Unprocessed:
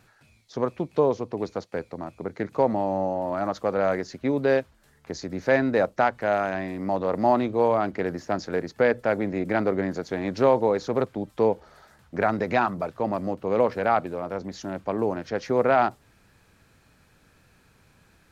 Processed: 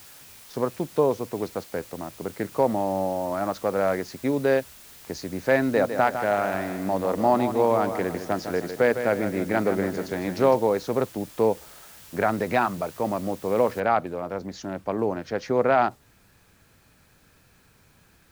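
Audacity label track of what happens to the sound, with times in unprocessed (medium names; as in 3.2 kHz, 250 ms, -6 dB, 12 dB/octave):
5.600000	10.560000	feedback delay 155 ms, feedback 44%, level -9 dB
13.800000	13.800000	noise floor step -48 dB -66 dB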